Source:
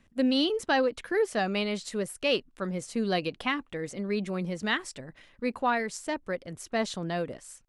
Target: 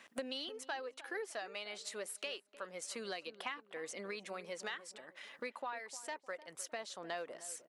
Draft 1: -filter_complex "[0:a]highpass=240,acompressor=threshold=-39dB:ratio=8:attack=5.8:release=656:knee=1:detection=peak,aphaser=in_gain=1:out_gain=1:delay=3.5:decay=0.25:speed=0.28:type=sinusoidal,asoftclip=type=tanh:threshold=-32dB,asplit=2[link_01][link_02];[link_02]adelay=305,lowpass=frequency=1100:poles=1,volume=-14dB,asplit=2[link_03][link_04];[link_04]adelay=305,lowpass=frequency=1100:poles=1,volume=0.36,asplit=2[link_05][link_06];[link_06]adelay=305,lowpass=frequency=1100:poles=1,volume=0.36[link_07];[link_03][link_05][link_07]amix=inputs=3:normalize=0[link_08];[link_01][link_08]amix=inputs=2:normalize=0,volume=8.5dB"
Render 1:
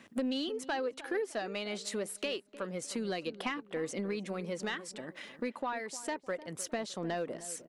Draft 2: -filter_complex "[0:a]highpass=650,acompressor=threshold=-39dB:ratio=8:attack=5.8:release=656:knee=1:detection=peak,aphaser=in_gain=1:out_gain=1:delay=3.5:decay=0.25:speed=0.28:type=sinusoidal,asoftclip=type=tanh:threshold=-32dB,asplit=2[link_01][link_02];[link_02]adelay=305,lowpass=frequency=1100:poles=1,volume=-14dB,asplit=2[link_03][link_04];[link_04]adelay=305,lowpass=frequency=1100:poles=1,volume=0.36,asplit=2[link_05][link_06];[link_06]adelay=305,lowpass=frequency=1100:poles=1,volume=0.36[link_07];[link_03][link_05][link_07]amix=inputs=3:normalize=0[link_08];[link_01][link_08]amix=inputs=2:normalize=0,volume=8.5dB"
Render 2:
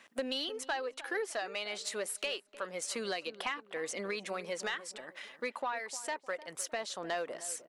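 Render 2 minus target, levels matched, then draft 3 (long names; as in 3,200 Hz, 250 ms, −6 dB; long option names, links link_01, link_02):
downward compressor: peak gain reduction −7 dB
-filter_complex "[0:a]highpass=650,acompressor=threshold=-47dB:ratio=8:attack=5.8:release=656:knee=1:detection=peak,aphaser=in_gain=1:out_gain=1:delay=3.5:decay=0.25:speed=0.28:type=sinusoidal,asoftclip=type=tanh:threshold=-32dB,asplit=2[link_01][link_02];[link_02]adelay=305,lowpass=frequency=1100:poles=1,volume=-14dB,asplit=2[link_03][link_04];[link_04]adelay=305,lowpass=frequency=1100:poles=1,volume=0.36,asplit=2[link_05][link_06];[link_06]adelay=305,lowpass=frequency=1100:poles=1,volume=0.36[link_07];[link_03][link_05][link_07]amix=inputs=3:normalize=0[link_08];[link_01][link_08]amix=inputs=2:normalize=0,volume=8.5dB"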